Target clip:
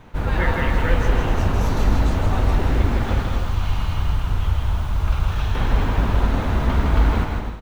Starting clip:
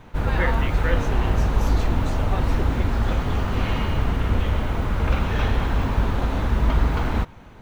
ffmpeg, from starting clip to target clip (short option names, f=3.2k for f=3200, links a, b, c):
-filter_complex "[0:a]asettb=1/sr,asplit=3[a][b][c];[a]atrim=end=3.224[d];[b]atrim=start=3.22:end=5.55,asetpts=PTS-STARTPTS,afade=t=in:d=0.004:c=qsin,afade=t=out:st=2.326:d=0.004:c=qsin,equalizer=f=250:t=o:w=1:g=-11,equalizer=f=500:t=o:w=1:g=-10,equalizer=f=2k:t=o:w=1:g=-8[e];[c]atrim=start=5.546[f];[d][e]acrossfade=d=0.004:c1=hsin:c2=qsin[g];[g][f]acrossfade=d=0.004:c1=qsin:c2=hsin,aecho=1:1:160|256|313.6|348.2|368.9:0.631|0.398|0.251|0.158|0.1"